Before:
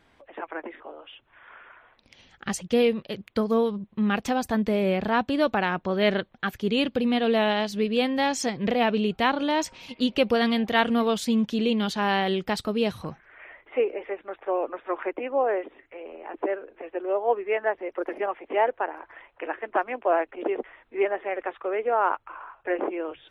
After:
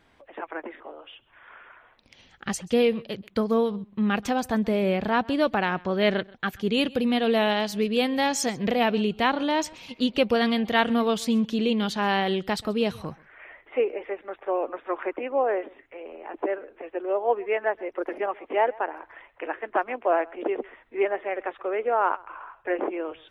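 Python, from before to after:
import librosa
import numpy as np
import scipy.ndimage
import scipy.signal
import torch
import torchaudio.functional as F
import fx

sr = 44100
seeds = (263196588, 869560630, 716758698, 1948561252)

y = fx.high_shelf(x, sr, hz=8900.0, db=10.5, at=(6.74, 9.05))
y = y + 10.0 ** (-23.5 / 20.0) * np.pad(y, (int(132 * sr / 1000.0), 0))[:len(y)]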